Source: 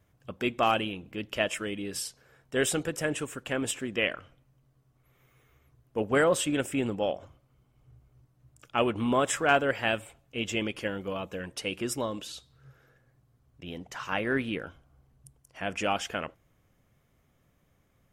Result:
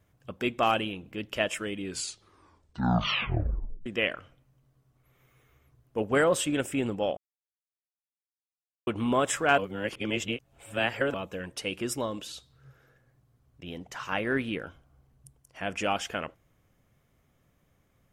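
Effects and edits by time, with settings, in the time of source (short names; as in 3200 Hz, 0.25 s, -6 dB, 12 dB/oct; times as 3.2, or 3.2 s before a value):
1.77 tape stop 2.09 s
7.17–8.87 mute
9.58–11.14 reverse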